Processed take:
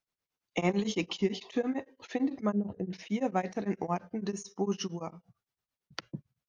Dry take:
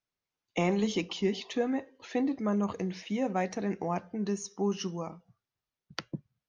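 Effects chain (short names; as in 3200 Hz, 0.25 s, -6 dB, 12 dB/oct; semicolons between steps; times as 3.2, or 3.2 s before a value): 2.52–2.93 running mean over 39 samples; beating tremolo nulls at 8.9 Hz; gain +2 dB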